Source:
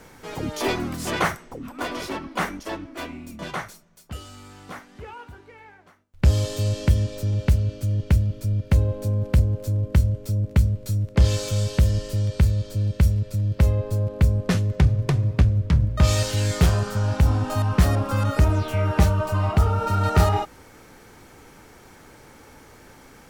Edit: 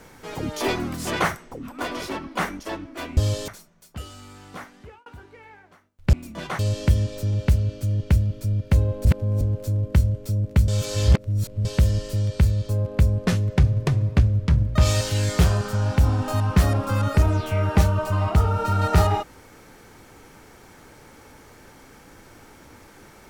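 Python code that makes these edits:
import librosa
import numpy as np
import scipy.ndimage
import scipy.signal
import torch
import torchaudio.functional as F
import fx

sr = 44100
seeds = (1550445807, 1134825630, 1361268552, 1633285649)

y = fx.edit(x, sr, fx.swap(start_s=3.17, length_s=0.46, other_s=6.28, other_length_s=0.31),
    fx.fade_out_span(start_s=4.9, length_s=0.31),
    fx.reverse_span(start_s=9.05, length_s=0.36),
    fx.reverse_span(start_s=10.68, length_s=0.97),
    fx.cut(start_s=12.69, length_s=1.22), tone=tone)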